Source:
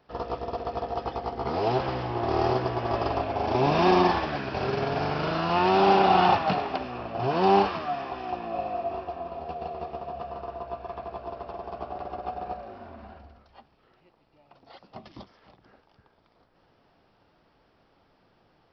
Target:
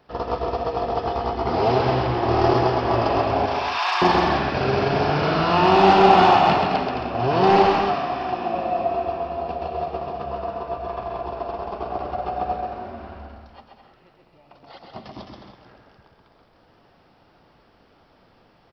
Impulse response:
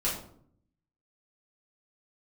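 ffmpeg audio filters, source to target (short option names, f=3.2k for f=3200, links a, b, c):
-filter_complex "[0:a]aeval=exprs='0.398*sin(PI/2*1.41*val(0)/0.398)':c=same,asettb=1/sr,asplit=3[a][b][c];[a]atrim=end=3.464[d];[b]atrim=start=3.46:end=4.02,asetpts=PTS-STARTPTS,afade=t=in:d=0.004:c=qsin,afade=t=out:st=0.556:d=0.004:c=qsin,highpass=f=980:w=0.5412,highpass=f=980:w=1.3066[e];[c]atrim=start=4.016[f];[d][e]acrossfade=d=0.004:c1=hsin:c2=qsin[g];[g][f]acrossfade=d=0.004:c1=qsin:c2=hsin,aecho=1:1:130|214.5|269.4|305.1|328.3:0.631|0.398|0.251|0.158|0.1,volume=-1.5dB"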